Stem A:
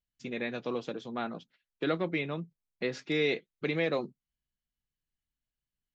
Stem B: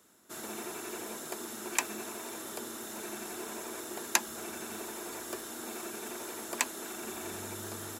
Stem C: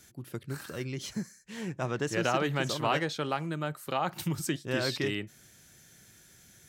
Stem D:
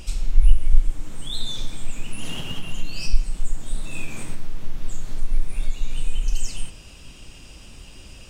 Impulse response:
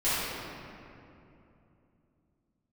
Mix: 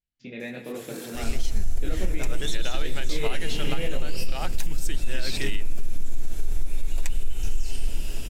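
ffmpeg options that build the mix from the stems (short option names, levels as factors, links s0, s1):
-filter_complex "[0:a]lowpass=4100,flanger=delay=19.5:depth=7.3:speed=1.2,volume=1.26,asplit=2[s0][s1];[s1]volume=0.119[s2];[1:a]aecho=1:1:7.1:0.55,adelay=450,volume=0.668[s3];[2:a]tiltshelf=f=780:g=-5.5,dynaudnorm=f=160:g=9:m=2.66,adelay=400,volume=0.473[s4];[3:a]acompressor=threshold=0.0891:ratio=1.5,asoftclip=type=tanh:threshold=0.133,adelay=1150,volume=0.708,asplit=2[s5][s6];[s6]volume=0.447[s7];[4:a]atrim=start_sample=2205[s8];[s2][s7]amix=inputs=2:normalize=0[s9];[s9][s8]afir=irnorm=-1:irlink=0[s10];[s0][s3][s4][s5][s10]amix=inputs=5:normalize=0,equalizer=f=1100:t=o:w=0.7:g=-9,alimiter=limit=0.237:level=0:latency=1:release=154"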